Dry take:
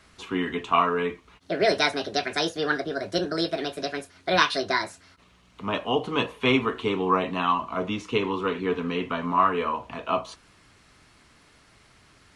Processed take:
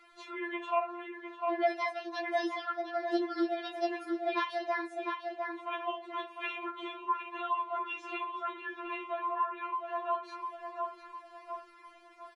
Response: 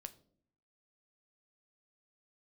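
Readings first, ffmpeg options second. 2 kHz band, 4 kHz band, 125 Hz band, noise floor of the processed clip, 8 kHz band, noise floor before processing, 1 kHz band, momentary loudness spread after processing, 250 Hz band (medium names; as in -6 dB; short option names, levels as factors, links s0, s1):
-10.0 dB, -15.5 dB, under -40 dB, -57 dBFS, under -20 dB, -58 dBFS, -6.5 dB, 12 LU, -9.5 dB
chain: -filter_complex "[0:a]bass=f=250:g=-12,treble=f=4000:g=-15,asplit=2[s0][s1];[s1]adelay=704,lowpass=f=2100:p=1,volume=0.376,asplit=2[s2][s3];[s3]adelay=704,lowpass=f=2100:p=1,volume=0.4,asplit=2[s4][s5];[s5]adelay=704,lowpass=f=2100:p=1,volume=0.4,asplit=2[s6][s7];[s7]adelay=704,lowpass=f=2100:p=1,volume=0.4[s8];[s0][s2][s4][s6][s8]amix=inputs=5:normalize=0,asplit=2[s9][s10];[1:a]atrim=start_sample=2205[s11];[s10][s11]afir=irnorm=-1:irlink=0,volume=0.447[s12];[s9][s12]amix=inputs=2:normalize=0,acompressor=threshold=0.0251:ratio=2.5,afftfilt=real='re*4*eq(mod(b,16),0)':imag='im*4*eq(mod(b,16),0)':win_size=2048:overlap=0.75"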